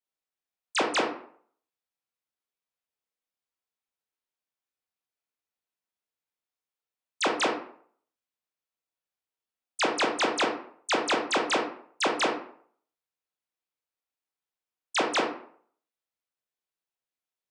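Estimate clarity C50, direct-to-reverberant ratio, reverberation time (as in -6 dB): 6.0 dB, 0.0 dB, 0.55 s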